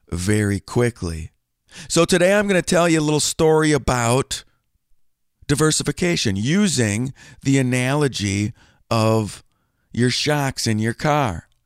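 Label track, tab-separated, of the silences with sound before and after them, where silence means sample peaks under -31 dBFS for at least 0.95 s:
4.400000	5.490000	silence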